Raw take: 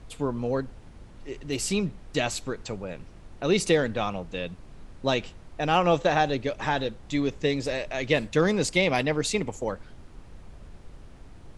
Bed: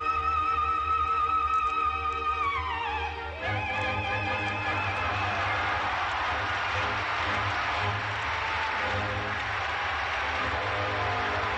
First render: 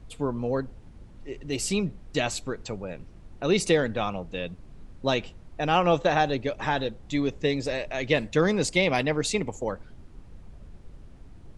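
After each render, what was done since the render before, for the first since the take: denoiser 6 dB, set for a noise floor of -48 dBFS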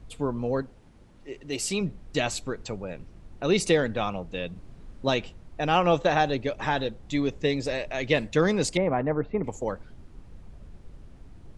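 0.62–1.81 low shelf 160 Hz -10 dB; 4.52–5.09 doubler 38 ms -4 dB; 8.77–9.44 LPF 1500 Hz 24 dB/oct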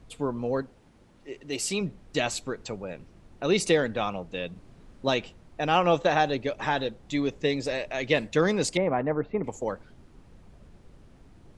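low shelf 100 Hz -9 dB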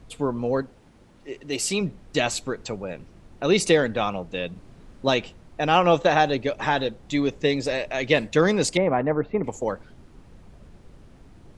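gain +4 dB

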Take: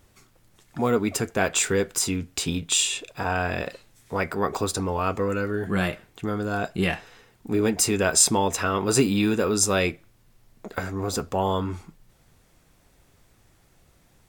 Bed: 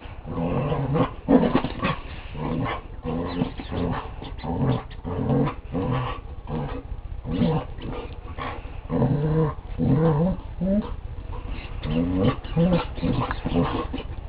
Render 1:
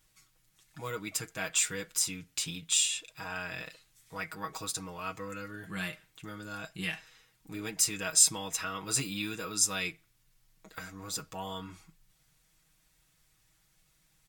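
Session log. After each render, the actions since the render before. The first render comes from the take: passive tone stack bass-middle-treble 5-5-5; comb 6.3 ms, depth 78%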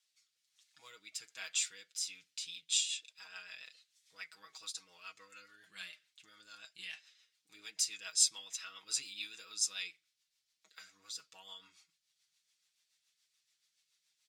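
band-pass 4400 Hz, Q 1.3; rotary speaker horn 1.2 Hz, later 7 Hz, at 2.06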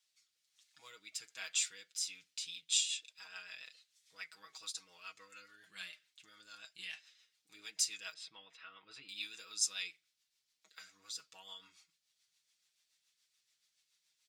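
8.14–9.09 air absorption 430 m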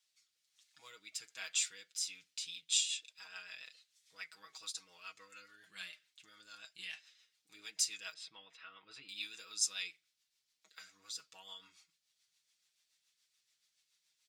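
nothing audible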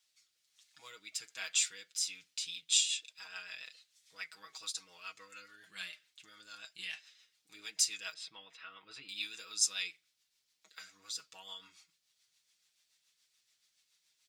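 gain +3.5 dB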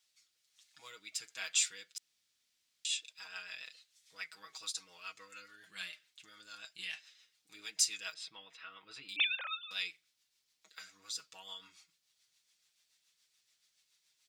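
1.98–2.85 room tone; 9.16–9.71 sine-wave speech

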